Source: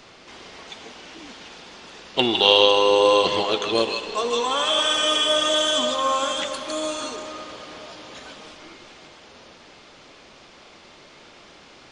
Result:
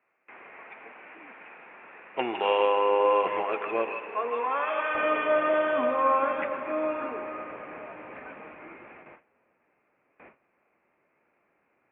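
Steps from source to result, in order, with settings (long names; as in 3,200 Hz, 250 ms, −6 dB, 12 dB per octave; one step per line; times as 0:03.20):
Chebyshev low-pass filter 2,500 Hz, order 6
noise gate with hold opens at −38 dBFS
high-pass filter 880 Hz 6 dB per octave, from 0:04.95 160 Hz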